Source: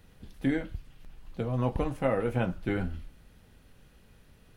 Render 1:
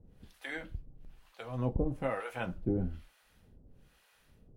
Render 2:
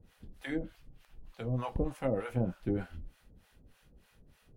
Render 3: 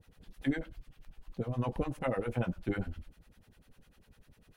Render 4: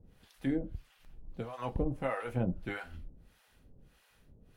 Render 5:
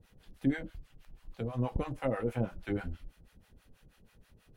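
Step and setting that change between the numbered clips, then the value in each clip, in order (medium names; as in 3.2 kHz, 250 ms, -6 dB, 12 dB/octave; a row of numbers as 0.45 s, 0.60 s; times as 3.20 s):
harmonic tremolo, rate: 1.1 Hz, 3.3 Hz, 10 Hz, 1.6 Hz, 6.2 Hz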